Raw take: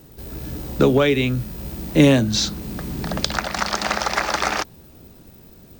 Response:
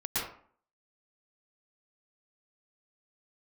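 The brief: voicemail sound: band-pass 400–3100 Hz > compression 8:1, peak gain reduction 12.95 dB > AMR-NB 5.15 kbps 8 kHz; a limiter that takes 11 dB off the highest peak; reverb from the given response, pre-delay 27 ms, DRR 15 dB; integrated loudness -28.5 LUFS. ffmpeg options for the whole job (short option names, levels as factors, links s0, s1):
-filter_complex "[0:a]alimiter=limit=0.224:level=0:latency=1,asplit=2[s0][s1];[1:a]atrim=start_sample=2205,adelay=27[s2];[s1][s2]afir=irnorm=-1:irlink=0,volume=0.0794[s3];[s0][s3]amix=inputs=2:normalize=0,highpass=400,lowpass=3100,acompressor=threshold=0.0224:ratio=8,volume=4.47" -ar 8000 -c:a libopencore_amrnb -b:a 5150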